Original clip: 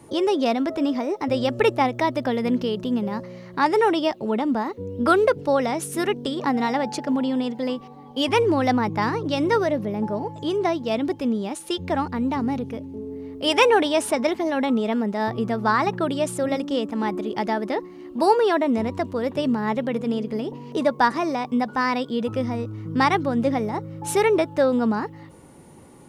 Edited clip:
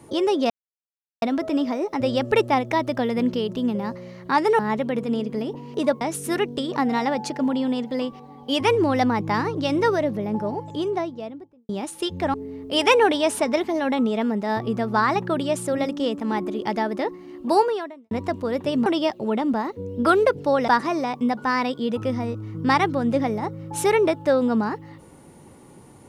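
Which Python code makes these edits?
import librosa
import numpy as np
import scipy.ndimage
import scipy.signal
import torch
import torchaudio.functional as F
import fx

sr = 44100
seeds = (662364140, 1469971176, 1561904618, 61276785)

y = fx.studio_fade_out(x, sr, start_s=10.27, length_s=1.1)
y = fx.edit(y, sr, fx.insert_silence(at_s=0.5, length_s=0.72),
    fx.swap(start_s=3.87, length_s=1.82, other_s=19.57, other_length_s=1.42),
    fx.cut(start_s=12.02, length_s=1.03),
    fx.fade_out_span(start_s=18.29, length_s=0.53, curve='qua'), tone=tone)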